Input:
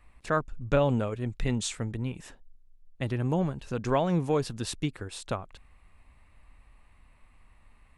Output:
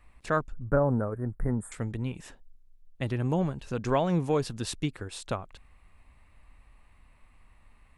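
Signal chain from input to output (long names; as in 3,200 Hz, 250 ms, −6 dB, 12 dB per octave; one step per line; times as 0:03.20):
0:00.52–0:01.72: elliptic band-stop filter 1,600–9,400 Hz, stop band 40 dB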